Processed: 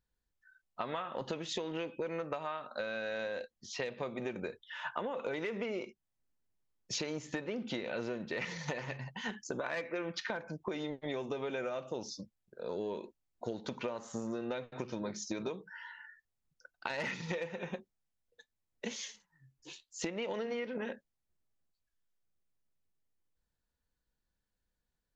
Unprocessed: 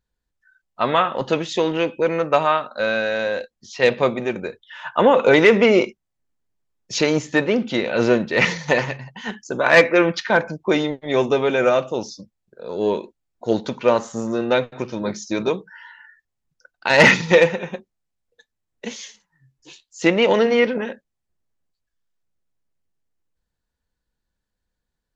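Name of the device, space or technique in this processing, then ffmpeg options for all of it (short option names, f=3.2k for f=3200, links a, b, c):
serial compression, peaks first: -af "acompressor=threshold=-24dB:ratio=6,acompressor=threshold=-29dB:ratio=3,volume=-6dB"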